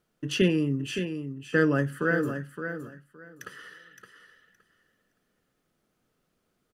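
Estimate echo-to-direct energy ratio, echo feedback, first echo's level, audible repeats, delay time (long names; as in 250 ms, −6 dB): −8.5 dB, 19%, −8.5 dB, 2, 567 ms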